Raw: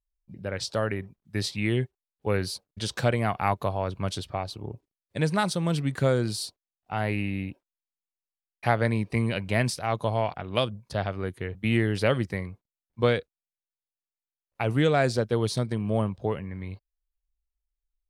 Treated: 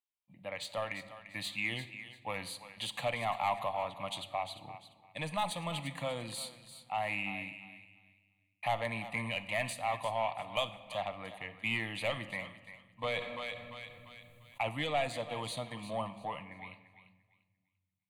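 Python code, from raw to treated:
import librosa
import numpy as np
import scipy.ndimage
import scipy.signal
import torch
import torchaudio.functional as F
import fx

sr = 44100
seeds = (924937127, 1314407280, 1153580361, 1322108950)

y = fx.weighting(x, sr, curve='A')
y = 10.0 ** (-21.5 / 20.0) * np.tanh(y / 10.0 ** (-21.5 / 20.0))
y = fx.fixed_phaser(y, sr, hz=1500.0, stages=6)
y = fx.echo_thinned(y, sr, ms=345, feedback_pct=25, hz=800.0, wet_db=-11.5)
y = fx.room_shoebox(y, sr, seeds[0], volume_m3=1300.0, walls='mixed', distance_m=0.44)
y = fx.env_flatten(y, sr, amount_pct=50, at=(13.16, 14.69))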